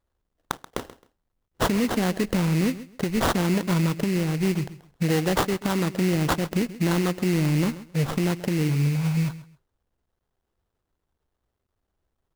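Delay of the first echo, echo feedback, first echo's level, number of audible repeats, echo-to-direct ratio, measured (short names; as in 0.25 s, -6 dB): 0.133 s, 21%, -16.0 dB, 2, -16.0 dB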